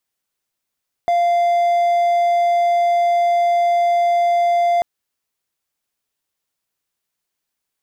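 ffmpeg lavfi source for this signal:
-f lavfi -i "aevalsrc='0.282*(1-4*abs(mod(694*t+0.25,1)-0.5))':d=3.74:s=44100"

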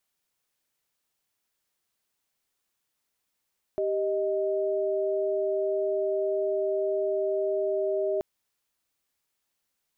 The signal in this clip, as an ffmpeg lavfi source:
-f lavfi -i "aevalsrc='0.0447*(sin(2*PI*392*t)+sin(2*PI*622.25*t))':d=4.43:s=44100"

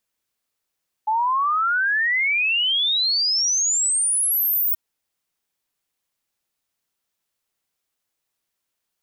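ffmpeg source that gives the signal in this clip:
-f lavfi -i "aevalsrc='0.133*clip(min(t,3.68-t)/0.01,0,1)*sin(2*PI*850*3.68/log(16000/850)*(exp(log(16000/850)*t/3.68)-1))':d=3.68:s=44100"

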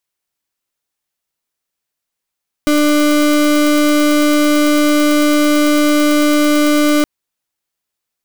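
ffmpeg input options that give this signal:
-f lavfi -i "aevalsrc='0.266*(2*lt(mod(297*t,1),0.34)-1)':d=4.37:s=44100"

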